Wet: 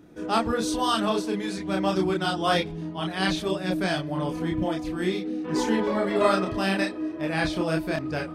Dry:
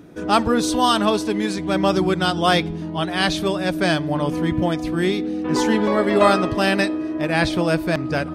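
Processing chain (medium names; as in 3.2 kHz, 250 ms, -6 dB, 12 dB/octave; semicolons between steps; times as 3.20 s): chorus voices 4, 1.1 Hz, delay 29 ms, depth 3 ms; trim -3.5 dB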